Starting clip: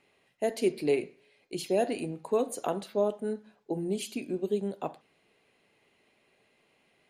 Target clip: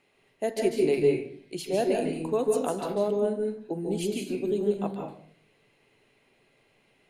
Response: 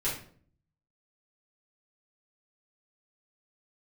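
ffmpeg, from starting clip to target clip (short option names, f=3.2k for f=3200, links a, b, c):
-filter_complex "[0:a]asplit=2[a][b];[1:a]atrim=start_sample=2205,lowshelf=f=160:g=5.5,adelay=142[c];[b][c]afir=irnorm=-1:irlink=0,volume=-8dB[d];[a][d]amix=inputs=2:normalize=0"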